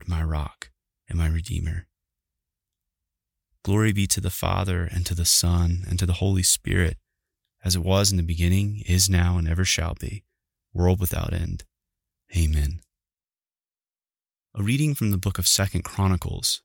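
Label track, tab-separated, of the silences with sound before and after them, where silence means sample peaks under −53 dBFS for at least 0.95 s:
1.840000	3.650000	silence
12.840000	14.550000	silence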